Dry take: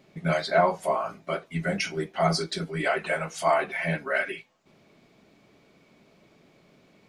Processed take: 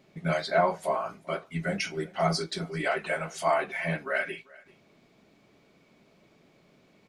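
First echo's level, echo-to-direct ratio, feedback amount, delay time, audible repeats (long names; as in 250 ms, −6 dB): −23.5 dB, −23.5 dB, repeats not evenly spaced, 391 ms, 1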